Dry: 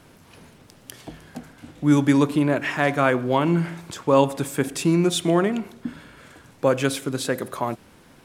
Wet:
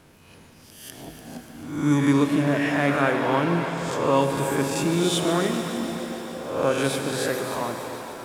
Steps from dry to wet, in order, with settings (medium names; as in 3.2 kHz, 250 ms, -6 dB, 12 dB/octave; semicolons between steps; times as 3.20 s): reverse spectral sustain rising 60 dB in 0.79 s; multi-head delay 146 ms, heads first and second, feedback 66%, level -14.5 dB; pitch-shifted reverb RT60 3.9 s, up +7 st, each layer -8 dB, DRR 6 dB; trim -5 dB